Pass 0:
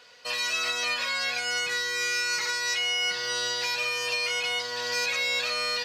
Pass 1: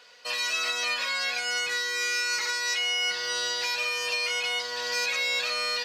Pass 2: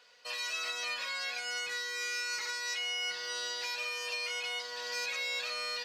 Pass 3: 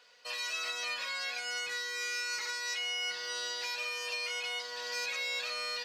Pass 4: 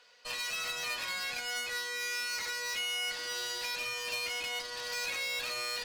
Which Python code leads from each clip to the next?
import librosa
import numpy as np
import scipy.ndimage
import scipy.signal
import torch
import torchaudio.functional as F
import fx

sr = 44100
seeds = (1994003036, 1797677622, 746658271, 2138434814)

y1 = fx.highpass(x, sr, hz=290.0, slope=6)
y2 = fx.hum_notches(y1, sr, base_hz=60, count=6)
y2 = y2 * 10.0 ** (-8.0 / 20.0)
y3 = fx.peak_eq(y2, sr, hz=100.0, db=-4.5, octaves=0.39)
y4 = fx.cheby_harmonics(y3, sr, harmonics=(4, 6), levels_db=(-12, -11), full_scale_db=-25.0)